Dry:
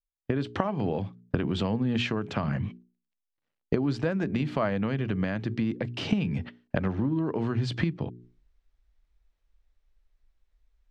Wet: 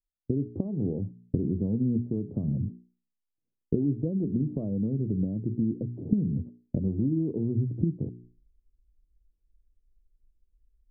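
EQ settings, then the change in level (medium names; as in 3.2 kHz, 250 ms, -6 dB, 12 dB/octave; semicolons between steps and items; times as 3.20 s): inverse Chebyshev low-pass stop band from 1.8 kHz, stop band 70 dB; +1.0 dB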